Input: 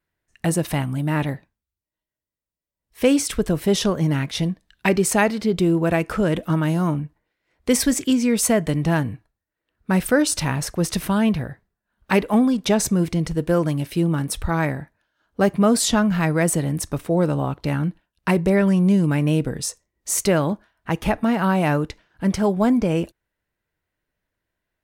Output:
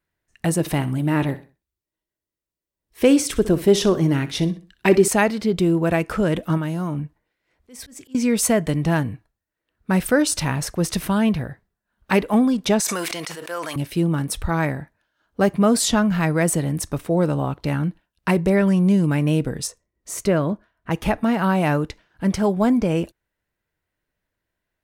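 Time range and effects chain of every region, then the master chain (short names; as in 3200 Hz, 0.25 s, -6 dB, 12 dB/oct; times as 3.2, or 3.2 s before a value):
0.6–5.08 bell 360 Hz +8 dB 0.48 oct + feedback echo 62 ms, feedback 33%, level -15.5 dB
6.57–8.15 compressor, threshold -20 dBFS + auto swell 0.486 s
12.8–13.76 HPF 940 Hz + sustainer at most 21 dB/s
19.67–20.91 high shelf 2300 Hz -9 dB + notch 830 Hz, Q 7.6
whole clip: dry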